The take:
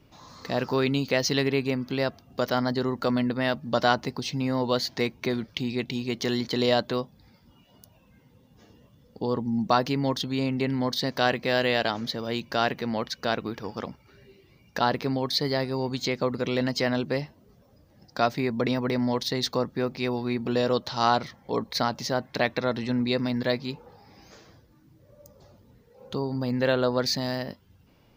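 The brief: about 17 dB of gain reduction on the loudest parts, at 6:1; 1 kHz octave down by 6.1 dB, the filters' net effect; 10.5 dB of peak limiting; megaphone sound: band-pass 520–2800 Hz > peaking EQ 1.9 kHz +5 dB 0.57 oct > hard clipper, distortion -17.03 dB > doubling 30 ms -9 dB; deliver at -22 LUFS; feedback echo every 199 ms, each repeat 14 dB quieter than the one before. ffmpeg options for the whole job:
-filter_complex "[0:a]equalizer=f=1000:t=o:g=-8.5,acompressor=threshold=0.01:ratio=6,alimiter=level_in=2.66:limit=0.0631:level=0:latency=1,volume=0.376,highpass=520,lowpass=2800,equalizer=f=1900:t=o:w=0.57:g=5,aecho=1:1:199|398:0.2|0.0399,asoftclip=type=hard:threshold=0.0112,asplit=2[s0][s1];[s1]adelay=30,volume=0.355[s2];[s0][s2]amix=inputs=2:normalize=0,volume=23.7"

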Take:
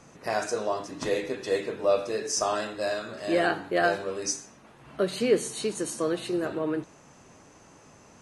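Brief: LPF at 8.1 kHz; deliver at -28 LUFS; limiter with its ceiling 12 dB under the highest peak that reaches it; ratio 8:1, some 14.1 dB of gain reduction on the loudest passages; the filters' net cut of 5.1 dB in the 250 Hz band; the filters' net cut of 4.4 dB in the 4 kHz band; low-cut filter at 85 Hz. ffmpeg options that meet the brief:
-af "highpass=85,lowpass=8100,equalizer=f=250:t=o:g=-8,equalizer=f=4000:t=o:g=-5.5,acompressor=threshold=0.02:ratio=8,volume=5.31,alimiter=limit=0.119:level=0:latency=1"

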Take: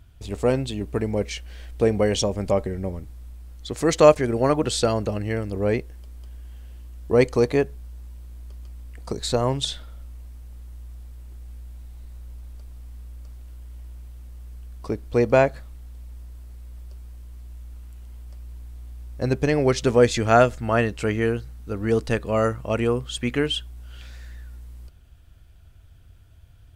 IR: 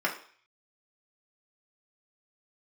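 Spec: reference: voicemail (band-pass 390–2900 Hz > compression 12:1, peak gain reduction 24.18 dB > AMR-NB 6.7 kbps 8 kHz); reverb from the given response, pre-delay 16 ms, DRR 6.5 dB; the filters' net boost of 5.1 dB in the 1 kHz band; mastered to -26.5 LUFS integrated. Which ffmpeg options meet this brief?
-filter_complex "[0:a]equalizer=f=1000:t=o:g=7.5,asplit=2[s0][s1];[1:a]atrim=start_sample=2205,adelay=16[s2];[s1][s2]afir=irnorm=-1:irlink=0,volume=0.141[s3];[s0][s3]amix=inputs=2:normalize=0,highpass=390,lowpass=2900,acompressor=threshold=0.0282:ratio=12,volume=3.76" -ar 8000 -c:a libopencore_amrnb -b:a 6700

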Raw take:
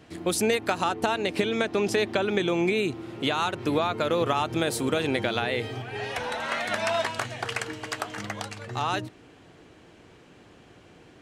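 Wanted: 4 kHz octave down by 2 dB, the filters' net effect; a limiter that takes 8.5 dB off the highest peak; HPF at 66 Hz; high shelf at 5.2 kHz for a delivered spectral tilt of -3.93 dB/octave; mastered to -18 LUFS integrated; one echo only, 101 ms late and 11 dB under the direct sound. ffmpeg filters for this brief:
-af "highpass=66,equalizer=f=4000:t=o:g=-5.5,highshelf=f=5200:g=7.5,alimiter=limit=0.126:level=0:latency=1,aecho=1:1:101:0.282,volume=3.76"

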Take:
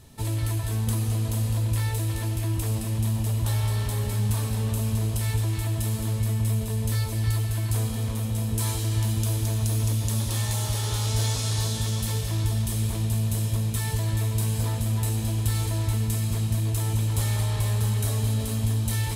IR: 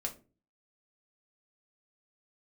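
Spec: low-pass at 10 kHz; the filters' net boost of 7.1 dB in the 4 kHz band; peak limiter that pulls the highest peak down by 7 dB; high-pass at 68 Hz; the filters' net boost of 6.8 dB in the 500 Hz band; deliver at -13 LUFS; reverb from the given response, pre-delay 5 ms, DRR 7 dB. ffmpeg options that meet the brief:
-filter_complex "[0:a]highpass=68,lowpass=10000,equalizer=f=500:t=o:g=8.5,equalizer=f=4000:t=o:g=8.5,alimiter=limit=0.126:level=0:latency=1,asplit=2[s0][s1];[1:a]atrim=start_sample=2205,adelay=5[s2];[s1][s2]afir=irnorm=-1:irlink=0,volume=0.422[s3];[s0][s3]amix=inputs=2:normalize=0,volume=4.47"

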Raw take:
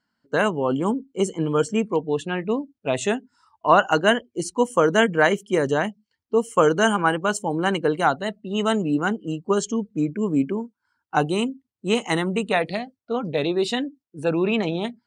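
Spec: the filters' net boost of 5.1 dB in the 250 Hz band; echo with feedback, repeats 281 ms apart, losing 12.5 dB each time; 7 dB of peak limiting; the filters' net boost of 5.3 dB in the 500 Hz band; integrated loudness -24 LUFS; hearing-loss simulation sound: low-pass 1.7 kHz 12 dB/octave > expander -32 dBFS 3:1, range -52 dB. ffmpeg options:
-af "equalizer=f=250:t=o:g=5,equalizer=f=500:t=o:g=5,alimiter=limit=0.473:level=0:latency=1,lowpass=1700,aecho=1:1:281|562|843:0.237|0.0569|0.0137,agate=range=0.00251:threshold=0.0251:ratio=3,volume=0.596"

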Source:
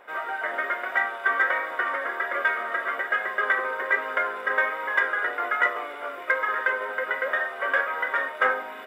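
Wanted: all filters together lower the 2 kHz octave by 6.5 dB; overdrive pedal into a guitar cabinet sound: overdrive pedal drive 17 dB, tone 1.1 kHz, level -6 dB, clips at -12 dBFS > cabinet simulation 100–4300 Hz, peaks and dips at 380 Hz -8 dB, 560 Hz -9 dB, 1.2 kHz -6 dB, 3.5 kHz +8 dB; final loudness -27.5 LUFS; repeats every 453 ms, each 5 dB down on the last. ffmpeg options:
-filter_complex "[0:a]equalizer=f=2000:t=o:g=-7.5,aecho=1:1:453|906|1359|1812|2265|2718|3171:0.562|0.315|0.176|0.0988|0.0553|0.031|0.0173,asplit=2[s0][s1];[s1]highpass=f=720:p=1,volume=7.08,asoftclip=type=tanh:threshold=0.251[s2];[s0][s2]amix=inputs=2:normalize=0,lowpass=f=1100:p=1,volume=0.501,highpass=100,equalizer=f=380:t=q:w=4:g=-8,equalizer=f=560:t=q:w=4:g=-9,equalizer=f=1200:t=q:w=4:g=-6,equalizer=f=3500:t=q:w=4:g=8,lowpass=f=4300:w=0.5412,lowpass=f=4300:w=1.3066,volume=0.944"

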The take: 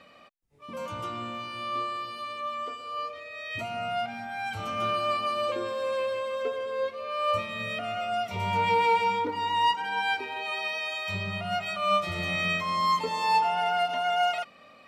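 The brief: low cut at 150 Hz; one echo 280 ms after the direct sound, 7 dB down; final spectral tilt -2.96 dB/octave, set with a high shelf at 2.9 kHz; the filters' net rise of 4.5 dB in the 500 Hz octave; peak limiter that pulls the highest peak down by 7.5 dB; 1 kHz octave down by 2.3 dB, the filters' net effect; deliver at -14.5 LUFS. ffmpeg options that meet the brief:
-af "highpass=150,equalizer=f=500:t=o:g=7,equalizer=f=1000:t=o:g=-6,highshelf=f=2900:g=6.5,alimiter=limit=0.1:level=0:latency=1,aecho=1:1:280:0.447,volume=5.01"

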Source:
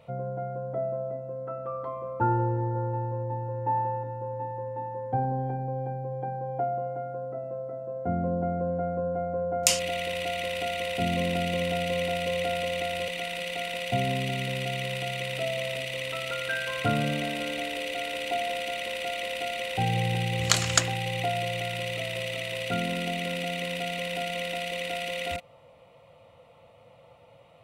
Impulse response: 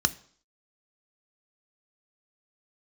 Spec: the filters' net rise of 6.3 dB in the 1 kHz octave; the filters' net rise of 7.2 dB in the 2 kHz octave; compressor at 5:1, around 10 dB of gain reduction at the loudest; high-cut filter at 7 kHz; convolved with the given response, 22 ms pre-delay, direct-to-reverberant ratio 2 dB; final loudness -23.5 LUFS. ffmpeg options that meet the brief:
-filter_complex "[0:a]lowpass=7000,equalizer=f=1000:t=o:g=8,equalizer=f=2000:t=o:g=7,acompressor=threshold=0.0501:ratio=5,asplit=2[s0][s1];[1:a]atrim=start_sample=2205,adelay=22[s2];[s1][s2]afir=irnorm=-1:irlink=0,volume=0.266[s3];[s0][s3]amix=inputs=2:normalize=0,volume=1.5"

